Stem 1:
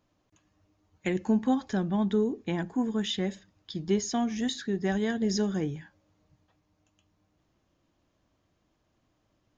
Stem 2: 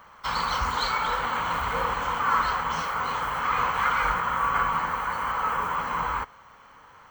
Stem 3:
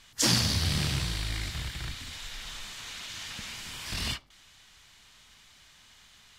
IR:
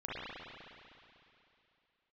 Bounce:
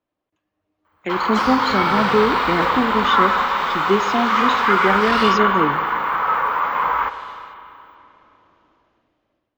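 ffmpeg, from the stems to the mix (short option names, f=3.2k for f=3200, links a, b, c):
-filter_complex "[0:a]lowshelf=f=380:g=6,dynaudnorm=f=110:g=17:m=13dB,volume=-8.5dB,asplit=2[a][b];[b]volume=-15.5dB[c];[1:a]afwtdn=0.0158,aexciter=amount=4.3:drive=9.4:freq=8k,adelay=850,volume=-1dB,asplit=2[d][e];[e]volume=-13dB[f];[2:a]dynaudnorm=f=470:g=3:m=14dB,flanger=delay=17:depth=6.4:speed=0.34,adelay=1150,volume=-9dB,asplit=2[g][h];[h]volume=-5.5dB[i];[3:a]atrim=start_sample=2205[j];[c][f][i]amix=inputs=3:normalize=0[k];[k][j]afir=irnorm=-1:irlink=0[l];[a][d][g][l]amix=inputs=4:normalize=0,acrossover=split=300 4000:gain=0.178 1 0.112[m][n][o];[m][n][o]amix=inputs=3:normalize=0,dynaudnorm=f=720:g=3:m=9dB"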